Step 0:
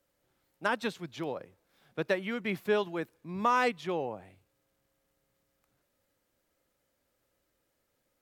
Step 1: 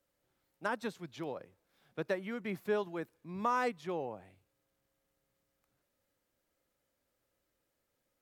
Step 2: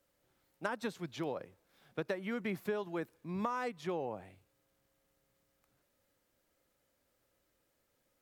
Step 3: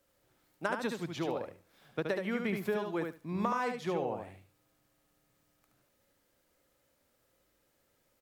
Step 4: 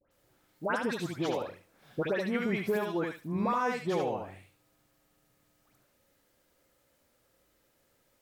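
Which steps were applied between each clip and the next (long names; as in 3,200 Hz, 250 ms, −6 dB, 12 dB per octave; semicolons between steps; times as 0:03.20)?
dynamic equaliser 3,000 Hz, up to −7 dB, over −47 dBFS, Q 1.2; level −4.5 dB
downward compressor 12 to 1, threshold −36 dBFS, peak gain reduction 10 dB; level +4 dB
repeating echo 73 ms, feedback 16%, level −5 dB; level +3 dB
all-pass dispersion highs, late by 114 ms, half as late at 1,800 Hz; level +3 dB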